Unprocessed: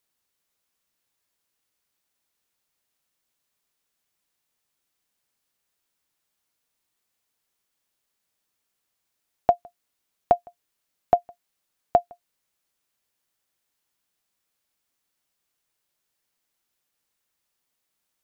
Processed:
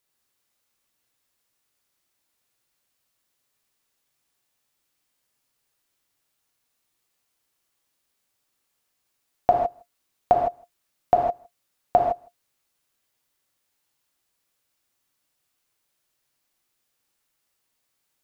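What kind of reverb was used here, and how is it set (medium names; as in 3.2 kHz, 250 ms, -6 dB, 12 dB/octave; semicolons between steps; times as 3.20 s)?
gated-style reverb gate 180 ms flat, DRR -0.5 dB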